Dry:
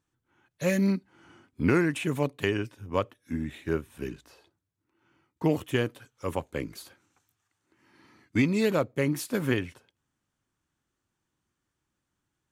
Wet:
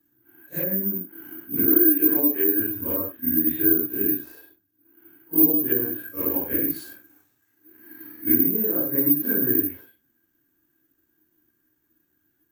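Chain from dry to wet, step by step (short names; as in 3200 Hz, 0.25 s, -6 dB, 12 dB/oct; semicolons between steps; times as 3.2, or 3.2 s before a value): phase scrambler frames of 0.2 s; 1.66–2.6 HPF 230 Hz 24 dB/oct; treble ducked by the level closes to 1300 Hz, closed at -24.5 dBFS; compressor 5:1, threshold -34 dBFS, peak gain reduction 14 dB; small resonant body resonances 310/1600 Hz, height 18 dB, ringing for 40 ms; careless resampling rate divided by 3×, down none, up zero stuff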